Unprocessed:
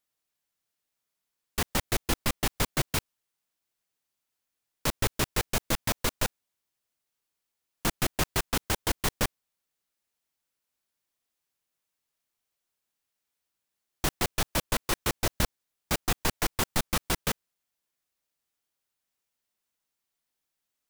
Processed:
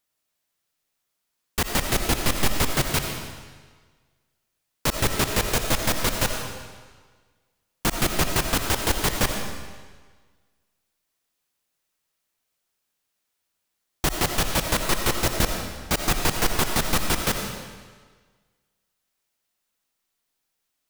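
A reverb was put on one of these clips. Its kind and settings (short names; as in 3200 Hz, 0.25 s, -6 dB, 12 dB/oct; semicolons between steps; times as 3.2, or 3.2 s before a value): digital reverb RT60 1.5 s, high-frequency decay 0.95×, pre-delay 40 ms, DRR 3.5 dB; gain +4.5 dB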